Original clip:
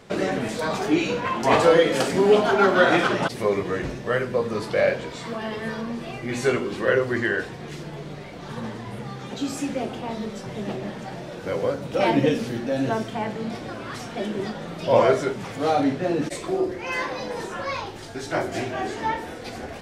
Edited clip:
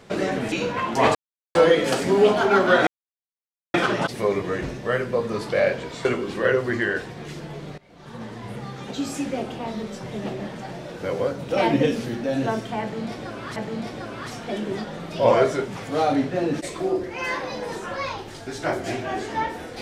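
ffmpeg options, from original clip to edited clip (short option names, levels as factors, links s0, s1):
-filter_complex "[0:a]asplit=7[s0][s1][s2][s3][s4][s5][s6];[s0]atrim=end=0.522[s7];[s1]atrim=start=0.998:end=1.63,asetpts=PTS-STARTPTS,afade=t=out:st=0.628:d=0.004:c=hsin,apad=pad_dur=0.4[s8];[s2]atrim=start=1.63:end=2.95,asetpts=PTS-STARTPTS,afade=t=in:d=0.004:c=hsin,afade=t=out:st=1.316:d=0.004:c=hsin,apad=pad_dur=0.87[s9];[s3]atrim=start=2.95:end=5.262,asetpts=PTS-STARTPTS,afade=t=in:d=0.004:c=hsin[s10];[s4]atrim=start=6.478:end=8.21,asetpts=PTS-STARTPTS,afade=t=out:st=1.728:d=0.004:c=hsin:silence=0.0794328[s11];[s5]atrim=start=8.21:end=13.992,asetpts=PTS-STARTPTS,afade=t=in:d=0.71:silence=0.0794328[s12];[s6]atrim=start=13.238[s13];[s8][s9][s10]concat=n=3:v=0:a=1[s14];[s7][s14]acrossfade=d=0.004:c1=hsin:c2=hsin[s15];[s11][s12]concat=n=2:v=0:a=1[s16];[s15][s16]acrossfade=d=0.004:c1=hsin:c2=hsin[s17];[s17][s13]acrossfade=d=0.004:c1=hsin:c2=hsin"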